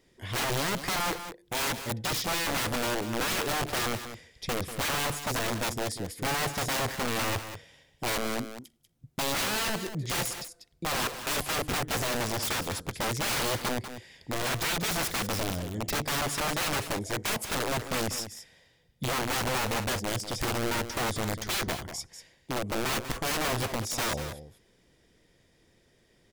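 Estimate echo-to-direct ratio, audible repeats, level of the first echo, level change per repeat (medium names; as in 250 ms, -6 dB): -10.5 dB, 1, -10.5 dB, no regular repeats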